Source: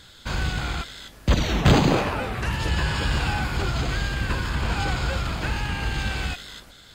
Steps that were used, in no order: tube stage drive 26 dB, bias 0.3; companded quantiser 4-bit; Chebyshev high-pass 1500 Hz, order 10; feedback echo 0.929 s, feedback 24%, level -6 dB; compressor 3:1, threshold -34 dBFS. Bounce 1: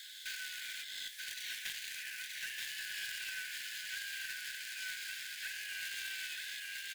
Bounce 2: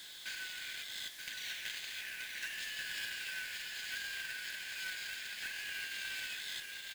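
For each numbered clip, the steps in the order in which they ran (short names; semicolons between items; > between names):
companded quantiser > feedback echo > compressor > Chebyshev high-pass > tube stage; compressor > Chebyshev high-pass > tube stage > feedback echo > companded quantiser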